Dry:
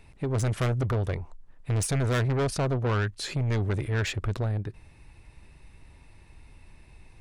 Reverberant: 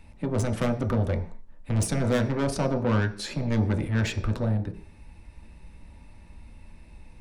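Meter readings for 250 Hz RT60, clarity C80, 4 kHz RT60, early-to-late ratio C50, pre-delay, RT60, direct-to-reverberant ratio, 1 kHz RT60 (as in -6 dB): 0.55 s, 16.5 dB, n/a, 12.0 dB, 3 ms, 0.45 s, 3.0 dB, 0.45 s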